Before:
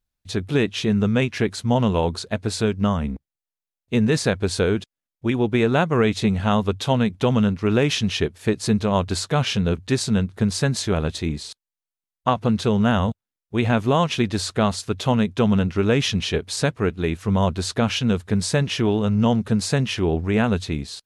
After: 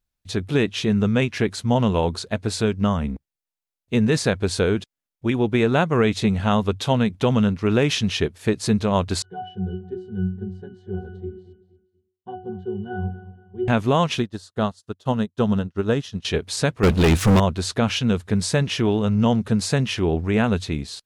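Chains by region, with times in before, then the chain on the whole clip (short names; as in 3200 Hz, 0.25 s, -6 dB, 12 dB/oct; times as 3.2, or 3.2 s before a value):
9.22–13.68 bell 370 Hz +9 dB 1.2 oct + octave resonator F#, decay 0.39 s + feedback echo 0.236 s, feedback 33%, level -15 dB
14.2–16.25 bell 2300 Hz -12 dB 0.33 oct + upward expander 2.5:1, over -40 dBFS
16.83–17.4 bell 720 Hz -6 dB 2.5 oct + sample leveller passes 5
whole clip: dry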